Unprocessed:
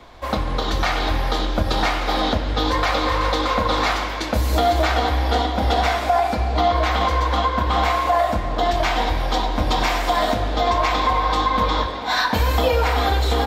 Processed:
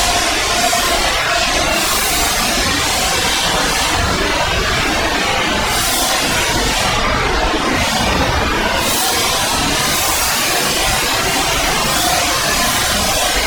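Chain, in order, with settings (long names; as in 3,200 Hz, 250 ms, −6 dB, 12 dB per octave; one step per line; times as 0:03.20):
delay that swaps between a low-pass and a high-pass 584 ms, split 1,100 Hz, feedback 56%, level −5.5 dB
in parallel at −4 dB: sine wavefolder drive 20 dB, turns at −6.5 dBFS
on the sum: extreme stretch with random phases 8.1×, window 0.05 s, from 0:08.61
reverb reduction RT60 0.52 s
level −1.5 dB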